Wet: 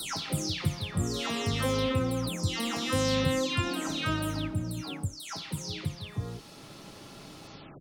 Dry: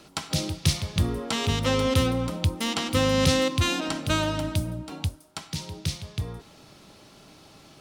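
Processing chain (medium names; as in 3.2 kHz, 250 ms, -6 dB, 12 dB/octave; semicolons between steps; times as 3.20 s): delay that grows with frequency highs early, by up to 330 ms; three bands compressed up and down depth 40%; trim -3.5 dB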